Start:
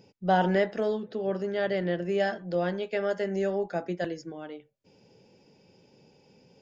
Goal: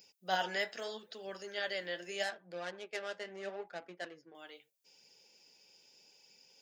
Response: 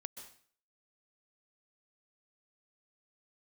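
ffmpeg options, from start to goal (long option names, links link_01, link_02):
-filter_complex "[0:a]asettb=1/sr,asplit=3[link_01][link_02][link_03];[link_01]atrim=end=2.234[link_04];[link_02]atrim=start=2.23:end=4.35,asetpts=PTS-STARTPTS,afade=type=in:duration=0.004:curve=qsin,afade=type=out:start_time=2.116:duration=0.004:curve=qsin,adynamicsmooth=sensitivity=2:basefreq=1100[link_05];[link_03]atrim=start=4.346[link_06];[link_04][link_05]acrossfade=duration=0.004:curve1=hsin:curve2=qsin[link_07];[link_07][link_06]acrossfade=duration=0.004:curve1=qsin:curve2=hsin,flanger=delay=0.4:depth=9.1:regen=62:speed=0.79:shape=sinusoidal,aderivative,volume=13dB"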